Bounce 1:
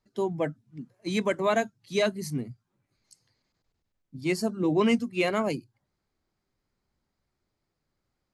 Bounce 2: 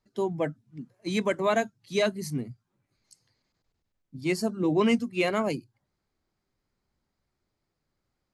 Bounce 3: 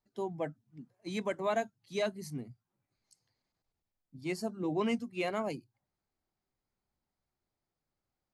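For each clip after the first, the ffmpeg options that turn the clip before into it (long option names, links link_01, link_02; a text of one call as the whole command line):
ffmpeg -i in.wav -af anull out.wav
ffmpeg -i in.wav -af "equalizer=frequency=770:width=2.4:gain=5,volume=-9dB" out.wav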